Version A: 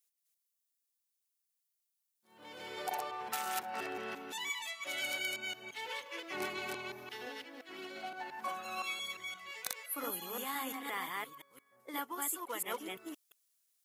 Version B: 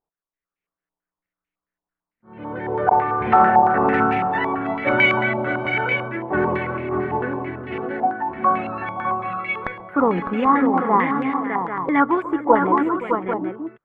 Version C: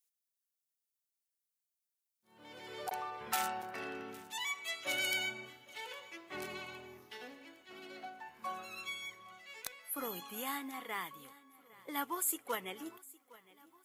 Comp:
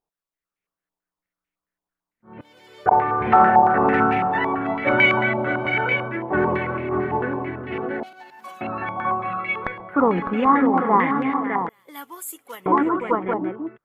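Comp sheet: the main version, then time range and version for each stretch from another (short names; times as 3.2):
B
2.41–2.86 from C
8.03–8.61 from A
11.69–12.66 from C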